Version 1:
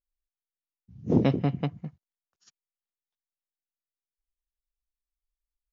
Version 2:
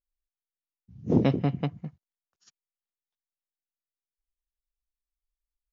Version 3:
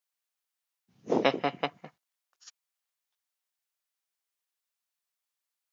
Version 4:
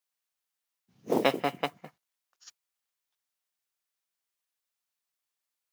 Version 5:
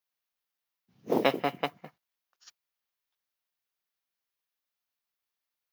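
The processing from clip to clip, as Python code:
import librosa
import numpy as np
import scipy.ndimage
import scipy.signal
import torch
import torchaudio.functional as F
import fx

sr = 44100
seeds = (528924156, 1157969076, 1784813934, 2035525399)

y1 = x
y2 = scipy.signal.sosfilt(scipy.signal.butter(2, 670.0, 'highpass', fs=sr, output='sos'), y1)
y2 = F.gain(torch.from_numpy(y2), 8.5).numpy()
y3 = fx.mod_noise(y2, sr, seeds[0], snr_db=23)
y4 = fx.peak_eq(y3, sr, hz=8200.0, db=-10.5, octaves=0.64)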